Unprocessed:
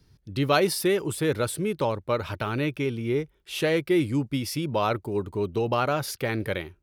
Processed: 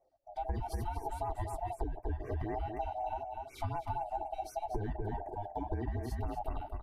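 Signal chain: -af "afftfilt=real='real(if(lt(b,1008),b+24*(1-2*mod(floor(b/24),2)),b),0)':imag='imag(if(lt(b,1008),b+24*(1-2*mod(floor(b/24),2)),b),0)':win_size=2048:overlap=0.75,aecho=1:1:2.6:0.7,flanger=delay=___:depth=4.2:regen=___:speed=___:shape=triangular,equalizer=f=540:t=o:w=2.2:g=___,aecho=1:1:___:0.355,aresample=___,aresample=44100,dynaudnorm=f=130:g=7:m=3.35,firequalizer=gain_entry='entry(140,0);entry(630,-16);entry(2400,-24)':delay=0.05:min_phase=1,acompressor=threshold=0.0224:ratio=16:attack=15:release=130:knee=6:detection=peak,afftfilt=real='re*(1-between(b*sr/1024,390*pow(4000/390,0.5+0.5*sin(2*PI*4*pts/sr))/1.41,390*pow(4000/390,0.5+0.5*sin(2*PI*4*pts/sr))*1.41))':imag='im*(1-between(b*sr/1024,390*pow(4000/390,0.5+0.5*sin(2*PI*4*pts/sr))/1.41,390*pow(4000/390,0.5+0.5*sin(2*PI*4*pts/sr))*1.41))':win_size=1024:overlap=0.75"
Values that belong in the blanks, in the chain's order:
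3.9, -65, 1.9, 8, 240, 32000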